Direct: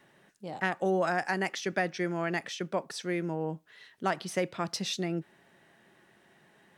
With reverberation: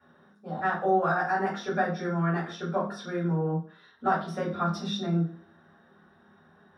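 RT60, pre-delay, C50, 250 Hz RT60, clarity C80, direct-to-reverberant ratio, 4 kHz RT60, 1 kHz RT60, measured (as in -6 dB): 0.50 s, 3 ms, 6.5 dB, 0.55 s, 11.5 dB, -8.5 dB, 0.40 s, 0.50 s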